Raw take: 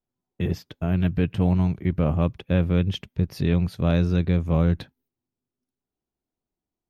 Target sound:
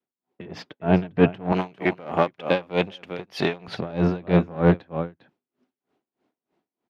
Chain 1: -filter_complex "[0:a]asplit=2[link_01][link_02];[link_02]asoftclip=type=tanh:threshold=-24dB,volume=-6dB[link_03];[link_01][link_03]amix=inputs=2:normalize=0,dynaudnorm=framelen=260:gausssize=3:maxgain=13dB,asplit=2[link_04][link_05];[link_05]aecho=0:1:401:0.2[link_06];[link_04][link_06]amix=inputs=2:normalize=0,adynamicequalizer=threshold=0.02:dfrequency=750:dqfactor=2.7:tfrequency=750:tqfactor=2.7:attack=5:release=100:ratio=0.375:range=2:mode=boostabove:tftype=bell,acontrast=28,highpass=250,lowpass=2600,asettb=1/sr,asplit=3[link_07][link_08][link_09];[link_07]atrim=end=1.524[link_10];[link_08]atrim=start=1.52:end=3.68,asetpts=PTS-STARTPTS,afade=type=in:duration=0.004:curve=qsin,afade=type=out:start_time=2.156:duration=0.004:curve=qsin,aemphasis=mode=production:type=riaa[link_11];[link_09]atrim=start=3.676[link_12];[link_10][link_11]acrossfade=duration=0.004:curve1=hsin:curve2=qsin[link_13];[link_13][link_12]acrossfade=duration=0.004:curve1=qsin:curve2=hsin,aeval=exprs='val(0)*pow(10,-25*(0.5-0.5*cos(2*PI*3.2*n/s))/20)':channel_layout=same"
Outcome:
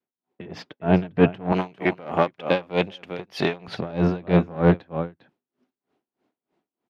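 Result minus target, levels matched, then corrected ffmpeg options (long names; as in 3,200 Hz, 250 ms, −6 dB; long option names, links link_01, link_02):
soft clipping: distortion −4 dB
-filter_complex "[0:a]asplit=2[link_01][link_02];[link_02]asoftclip=type=tanh:threshold=-31dB,volume=-6dB[link_03];[link_01][link_03]amix=inputs=2:normalize=0,dynaudnorm=framelen=260:gausssize=3:maxgain=13dB,asplit=2[link_04][link_05];[link_05]aecho=0:1:401:0.2[link_06];[link_04][link_06]amix=inputs=2:normalize=0,adynamicequalizer=threshold=0.02:dfrequency=750:dqfactor=2.7:tfrequency=750:tqfactor=2.7:attack=5:release=100:ratio=0.375:range=2:mode=boostabove:tftype=bell,acontrast=28,highpass=250,lowpass=2600,asettb=1/sr,asplit=3[link_07][link_08][link_09];[link_07]atrim=end=1.524[link_10];[link_08]atrim=start=1.52:end=3.68,asetpts=PTS-STARTPTS,afade=type=in:duration=0.004:curve=qsin,afade=type=out:start_time=2.156:duration=0.004:curve=qsin,aemphasis=mode=production:type=riaa[link_11];[link_09]atrim=start=3.676[link_12];[link_10][link_11]acrossfade=duration=0.004:curve1=hsin:curve2=qsin[link_13];[link_13][link_12]acrossfade=duration=0.004:curve1=qsin:curve2=hsin,aeval=exprs='val(0)*pow(10,-25*(0.5-0.5*cos(2*PI*3.2*n/s))/20)':channel_layout=same"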